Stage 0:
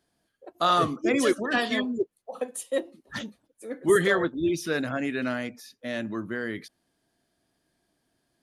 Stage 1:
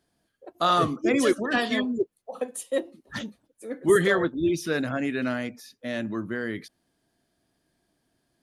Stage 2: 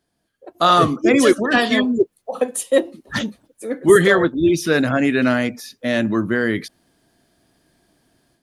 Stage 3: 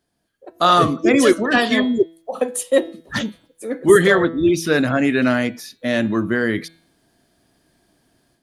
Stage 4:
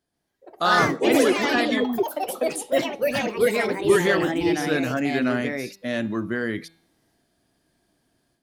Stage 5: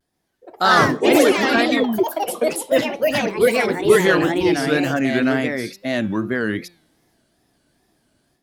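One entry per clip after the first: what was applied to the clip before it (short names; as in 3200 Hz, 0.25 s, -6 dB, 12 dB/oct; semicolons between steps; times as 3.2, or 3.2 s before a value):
low shelf 320 Hz +3 dB
AGC gain up to 11.5 dB
de-hum 164.6 Hz, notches 27
echoes that change speed 0.137 s, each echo +3 st, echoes 3; gain -7 dB
wow and flutter 130 cents; gain +4.5 dB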